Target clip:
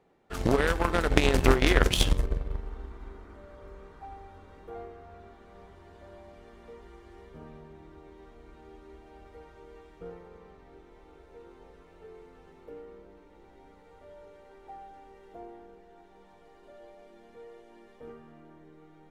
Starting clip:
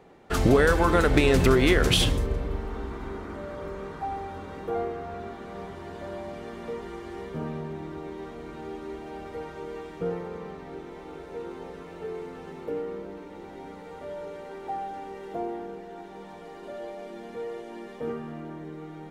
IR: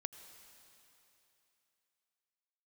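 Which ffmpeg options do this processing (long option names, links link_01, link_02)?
-af "asubboost=boost=5.5:cutoff=62,aeval=exprs='0.531*(cos(1*acos(clip(val(0)/0.531,-1,1)))-cos(1*PI/2))+0.15*(cos(3*acos(clip(val(0)/0.531,-1,1)))-cos(3*PI/2))':channel_layout=same,volume=3.5dB"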